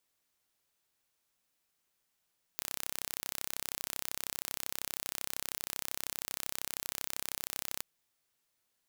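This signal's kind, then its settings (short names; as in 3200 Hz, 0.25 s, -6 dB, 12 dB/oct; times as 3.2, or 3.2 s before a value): pulse train 32.8/s, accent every 0, -9 dBFS 5.24 s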